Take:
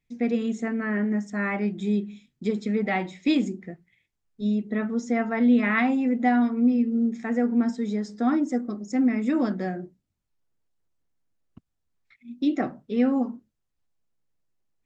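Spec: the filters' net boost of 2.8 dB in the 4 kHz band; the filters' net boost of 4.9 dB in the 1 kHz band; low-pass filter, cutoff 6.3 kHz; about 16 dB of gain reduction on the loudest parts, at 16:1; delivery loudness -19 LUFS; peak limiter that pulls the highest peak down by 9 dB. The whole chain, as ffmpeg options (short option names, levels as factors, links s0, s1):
-af "lowpass=6300,equalizer=f=1000:t=o:g=7.5,equalizer=f=4000:t=o:g=3.5,acompressor=threshold=0.0282:ratio=16,volume=8.91,alimiter=limit=0.316:level=0:latency=1"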